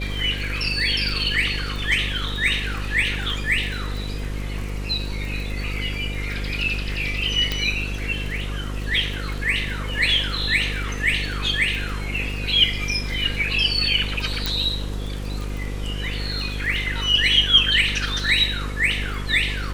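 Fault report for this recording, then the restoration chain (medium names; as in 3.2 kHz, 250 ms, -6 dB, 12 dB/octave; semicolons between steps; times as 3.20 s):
buzz 50 Hz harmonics 11 -28 dBFS
crackle 41 per s -29 dBFS
7.52 s: pop -9 dBFS
14.46 s: pop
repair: de-click; de-hum 50 Hz, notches 11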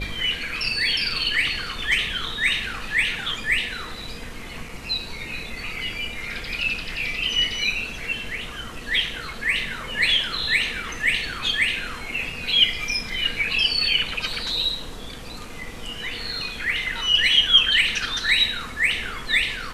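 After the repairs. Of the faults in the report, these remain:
7.52 s: pop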